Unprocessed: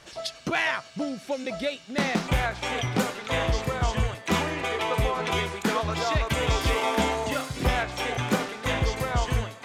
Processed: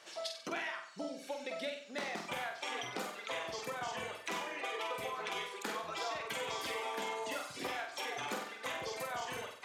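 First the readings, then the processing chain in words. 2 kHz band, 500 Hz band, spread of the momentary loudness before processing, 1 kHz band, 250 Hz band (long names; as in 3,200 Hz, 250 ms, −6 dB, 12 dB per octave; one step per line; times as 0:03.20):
−11.0 dB, −12.5 dB, 6 LU, −11.0 dB, −18.0 dB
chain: reverb reduction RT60 0.82 s
high-pass filter 390 Hz 12 dB per octave
downward compressor, threshold −32 dBFS, peak gain reduction 10.5 dB
flutter between parallel walls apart 8.1 metres, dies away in 0.56 s
level −5.5 dB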